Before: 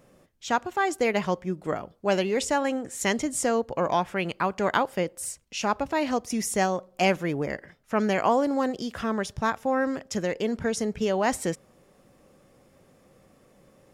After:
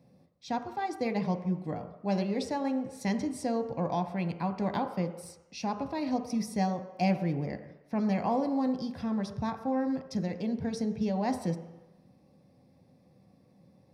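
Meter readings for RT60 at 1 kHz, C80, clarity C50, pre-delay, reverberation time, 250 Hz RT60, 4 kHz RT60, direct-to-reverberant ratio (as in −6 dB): 1.1 s, 11.5 dB, 10.0 dB, 3 ms, 1.0 s, 0.80 s, 1.1 s, 6.0 dB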